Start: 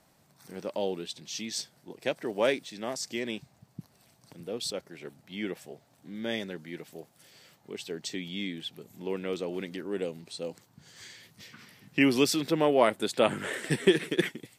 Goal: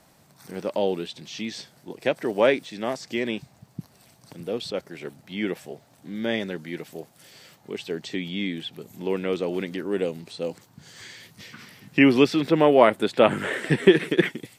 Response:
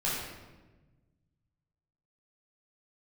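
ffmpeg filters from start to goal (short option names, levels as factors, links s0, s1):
-filter_complex "[0:a]acrossover=split=3400[s0][s1];[s1]acompressor=threshold=0.00251:ratio=4:attack=1:release=60[s2];[s0][s2]amix=inputs=2:normalize=0,volume=2.24"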